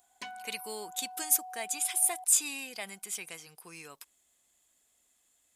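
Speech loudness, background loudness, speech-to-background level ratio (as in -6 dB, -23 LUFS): -30.0 LUFS, -46.5 LUFS, 16.5 dB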